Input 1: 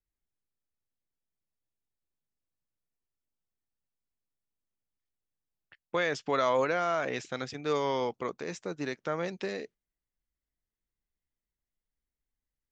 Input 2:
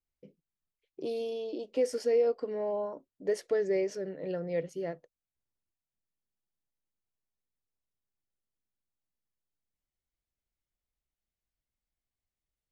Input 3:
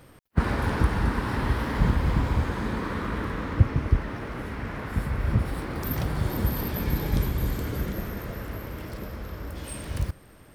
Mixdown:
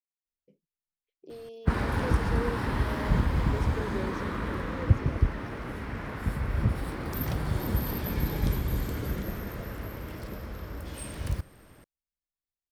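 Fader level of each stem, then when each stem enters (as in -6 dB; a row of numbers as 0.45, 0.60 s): off, -9.5 dB, -2.5 dB; off, 0.25 s, 1.30 s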